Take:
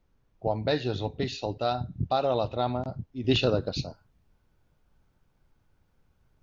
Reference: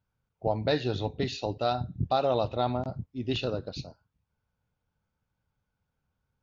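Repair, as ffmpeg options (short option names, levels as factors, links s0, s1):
-af "agate=range=0.0891:threshold=0.001,asetnsamples=n=441:p=0,asendcmd='3.24 volume volume -6.5dB',volume=1"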